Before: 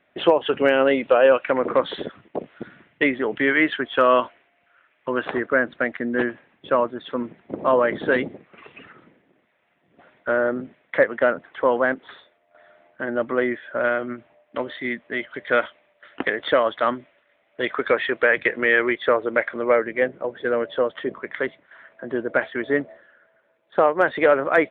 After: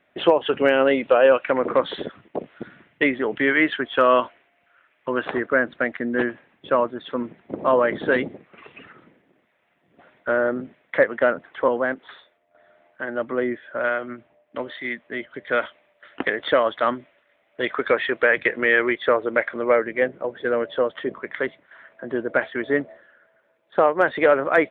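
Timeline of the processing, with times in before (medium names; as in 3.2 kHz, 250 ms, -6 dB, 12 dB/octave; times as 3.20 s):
11.68–15.61 s: harmonic tremolo 1.1 Hz, depth 50%, crossover 560 Hz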